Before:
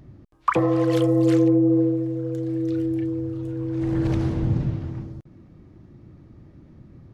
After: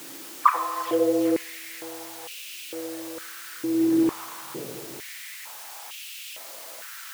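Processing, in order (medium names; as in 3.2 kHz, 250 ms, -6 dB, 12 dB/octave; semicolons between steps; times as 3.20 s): delay that grows with frequency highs early, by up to 180 ms; word length cut 6-bit, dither triangular; on a send at -7 dB: reverberation RT60 1.2 s, pre-delay 6 ms; on the sum: step-sequenced high-pass 2.2 Hz 310–2700 Hz; trim -6 dB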